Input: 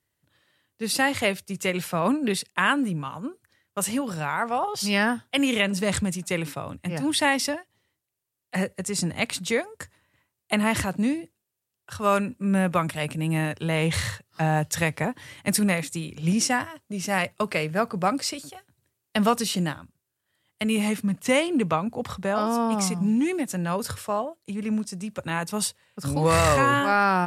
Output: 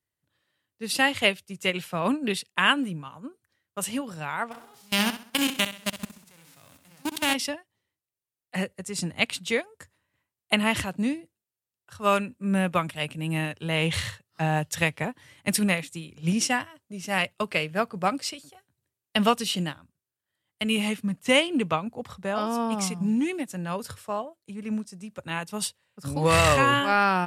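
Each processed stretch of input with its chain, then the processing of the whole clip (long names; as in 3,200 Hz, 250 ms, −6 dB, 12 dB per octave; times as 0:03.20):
0:04.51–0:07.33: spectral envelope flattened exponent 0.3 + output level in coarse steps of 23 dB + repeating echo 65 ms, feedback 47%, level −8 dB
whole clip: dynamic equaliser 3,000 Hz, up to +8 dB, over −44 dBFS, Q 2.1; expander for the loud parts 1.5 to 1, over −35 dBFS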